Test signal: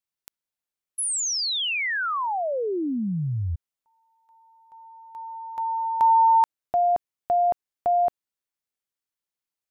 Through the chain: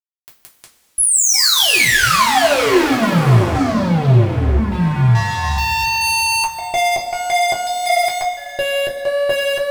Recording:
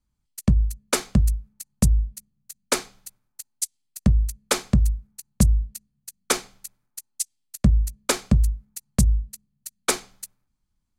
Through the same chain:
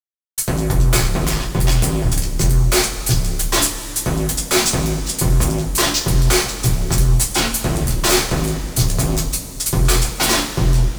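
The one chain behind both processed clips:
delay with pitch and tempo change per echo 98 ms, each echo −4 semitones, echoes 2, each echo −6 dB
fuzz pedal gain 38 dB, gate −48 dBFS
coupled-rooms reverb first 0.22 s, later 2.8 s, from −18 dB, DRR −3 dB
level −4 dB

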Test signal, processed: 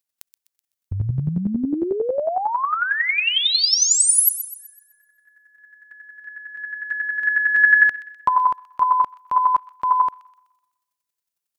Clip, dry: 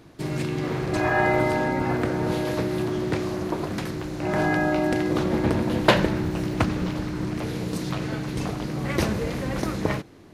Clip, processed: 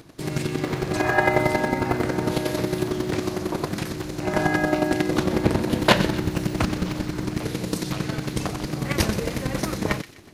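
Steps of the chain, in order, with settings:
high-shelf EQ 4,200 Hz +7 dB
square-wave tremolo 11 Hz, depth 60%, duty 15%
delay with a high-pass on its return 126 ms, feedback 43%, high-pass 2,300 Hz, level −12 dB
level +6 dB

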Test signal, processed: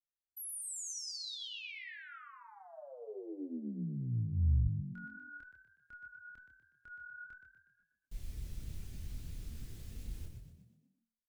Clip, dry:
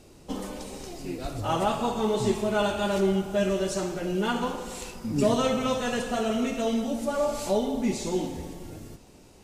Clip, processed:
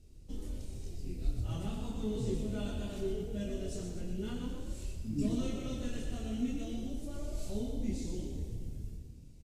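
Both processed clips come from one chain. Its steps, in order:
guitar amp tone stack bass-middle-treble 10-0-1
multi-voice chorus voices 6, 0.4 Hz, delay 26 ms, depth 2.7 ms
echo with shifted repeats 122 ms, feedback 47%, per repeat +37 Hz, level −7 dB
level +10 dB

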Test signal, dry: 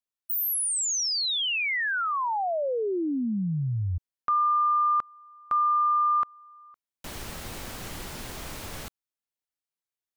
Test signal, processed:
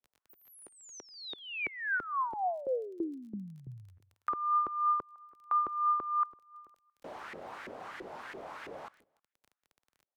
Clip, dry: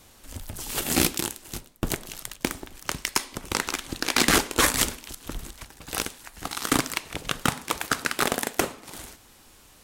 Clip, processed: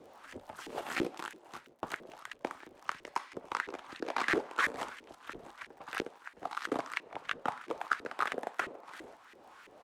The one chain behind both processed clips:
on a send: repeating echo 156 ms, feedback 21%, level −23 dB
on the sum: auto-filter band-pass saw up 3 Hz 370–2,000 Hz
surface crackle 21 per second −56 dBFS
multiband upward and downward compressor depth 40%
level −1 dB

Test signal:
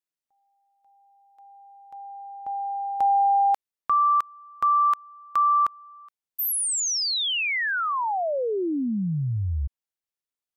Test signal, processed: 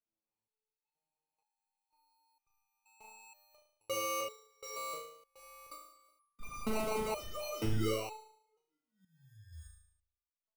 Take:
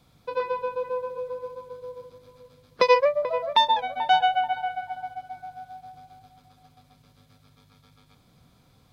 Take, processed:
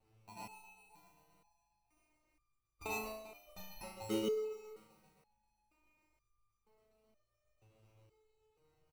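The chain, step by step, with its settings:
inverse Chebyshev band-stop filter 250–700 Hz, stop band 40 dB
parametric band 250 Hz −14.5 dB 1.8 octaves
comb filter 2.4 ms, depth 40%
sample-rate reduction 1,700 Hz, jitter 0%
on a send: flutter between parallel walls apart 6.3 metres, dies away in 0.66 s
on the sum: step-sequenced resonator 2.1 Hz 110–1,200 Hz

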